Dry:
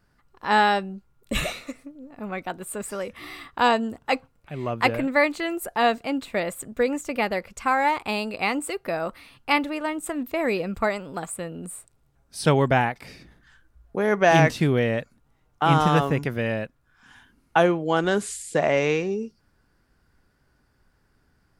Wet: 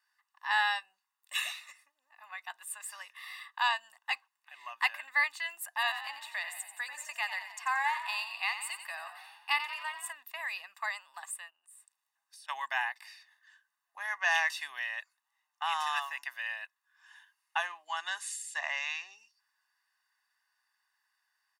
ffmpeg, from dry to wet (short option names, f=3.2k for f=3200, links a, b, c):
-filter_complex "[0:a]asplit=3[a][b][c];[a]afade=t=out:st=5.77:d=0.02[d];[b]asplit=8[e][f][g][h][i][j][k][l];[f]adelay=89,afreqshift=45,volume=-10dB[m];[g]adelay=178,afreqshift=90,volume=-14.9dB[n];[h]adelay=267,afreqshift=135,volume=-19.8dB[o];[i]adelay=356,afreqshift=180,volume=-24.6dB[p];[j]adelay=445,afreqshift=225,volume=-29.5dB[q];[k]adelay=534,afreqshift=270,volume=-34.4dB[r];[l]adelay=623,afreqshift=315,volume=-39.3dB[s];[e][m][n][o][p][q][r][s]amix=inputs=8:normalize=0,afade=t=in:st=5.77:d=0.02,afade=t=out:st=10.11:d=0.02[t];[c]afade=t=in:st=10.11:d=0.02[u];[d][t][u]amix=inputs=3:normalize=0,asplit=3[v][w][x];[v]afade=t=out:st=11.49:d=0.02[y];[w]acompressor=threshold=-46dB:ratio=8:attack=3.2:release=140:knee=1:detection=peak,afade=t=in:st=11.49:d=0.02,afade=t=out:st=12.48:d=0.02[z];[x]afade=t=in:st=12.48:d=0.02[aa];[y][z][aa]amix=inputs=3:normalize=0,highpass=f=1.1k:w=0.5412,highpass=f=1.1k:w=1.3066,aecho=1:1:1.1:0.88,volume=-7.5dB"